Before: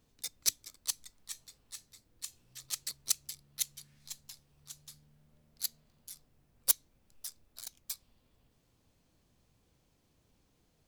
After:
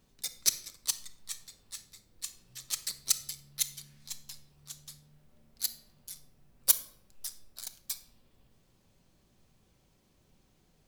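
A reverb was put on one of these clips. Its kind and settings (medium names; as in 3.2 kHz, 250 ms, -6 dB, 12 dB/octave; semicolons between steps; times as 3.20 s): simulated room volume 2000 m³, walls furnished, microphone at 1.1 m; trim +3 dB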